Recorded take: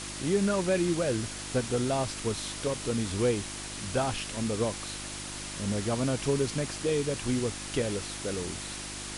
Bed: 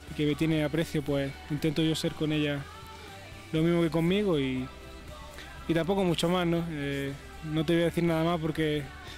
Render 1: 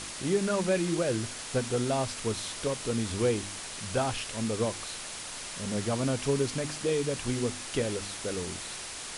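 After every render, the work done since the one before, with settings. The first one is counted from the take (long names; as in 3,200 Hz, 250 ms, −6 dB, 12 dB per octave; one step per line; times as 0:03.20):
hum removal 50 Hz, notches 7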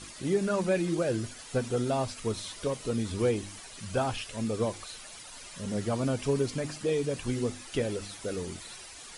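broadband denoise 11 dB, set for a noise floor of −40 dBFS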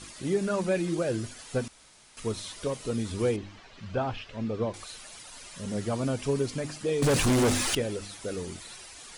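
0:01.68–0:02.17: fill with room tone
0:03.36–0:04.74: high-frequency loss of the air 210 metres
0:07.02–0:07.75: leveller curve on the samples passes 5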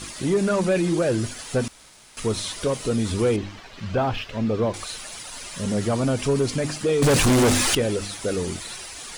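leveller curve on the samples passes 1
in parallel at −0.5 dB: brickwall limiter −23.5 dBFS, peak gain reduction 7.5 dB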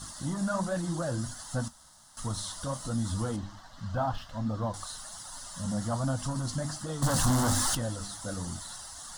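phaser with its sweep stopped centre 1,000 Hz, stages 4
flanger 1.3 Hz, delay 6.3 ms, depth 9.5 ms, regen −59%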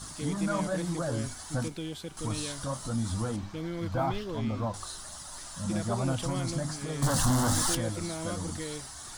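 mix in bed −10.5 dB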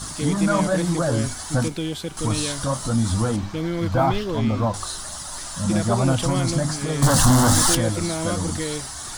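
level +10 dB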